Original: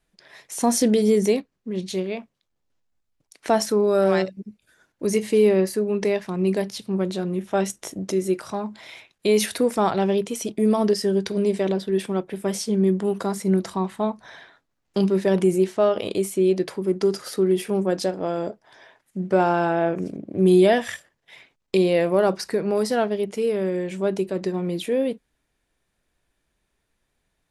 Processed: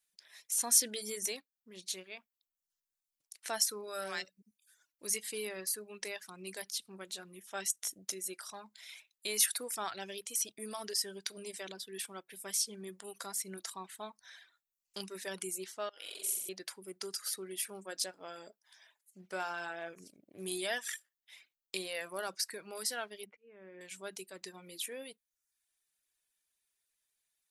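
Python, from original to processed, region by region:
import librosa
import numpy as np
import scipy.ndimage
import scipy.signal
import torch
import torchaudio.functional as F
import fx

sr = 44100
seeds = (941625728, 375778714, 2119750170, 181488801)

y = fx.chain(x, sr, fx.highpass(hz=470.0, slope=6),
    fx.level_steps(step_db=18),
    fx.room_flutter(wall_m=7.6, rt60_s=1.5), at=(15.89, 16.49))
y = fx.chain(y, sr, fx.peak_eq(hz=250.0, db=6.5, octaves=0.6),
    fx.auto_swell(attack_ms=582.0),
    fx.lowpass(hz=2300.0, slope=24), at=(23.26, 23.81))
y = scipy.signal.lfilter([1.0, -0.97], [1.0], y)
y = fx.dereverb_blind(y, sr, rt60_s=0.64)
y = fx.dynamic_eq(y, sr, hz=1500.0, q=2.1, threshold_db=-60.0, ratio=4.0, max_db=5)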